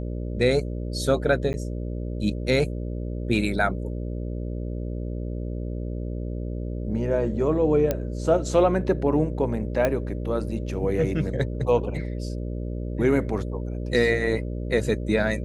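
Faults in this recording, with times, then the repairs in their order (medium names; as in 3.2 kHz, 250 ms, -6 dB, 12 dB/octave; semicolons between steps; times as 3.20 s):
buzz 60 Hz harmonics 10 -30 dBFS
1.53–1.54 s: dropout 9.9 ms
7.91 s: pop -10 dBFS
9.85 s: pop -10 dBFS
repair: de-click; de-hum 60 Hz, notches 10; interpolate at 1.53 s, 9.9 ms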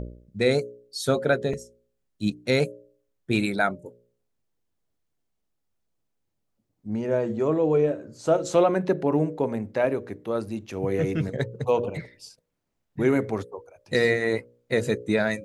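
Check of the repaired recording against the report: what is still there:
9.85 s: pop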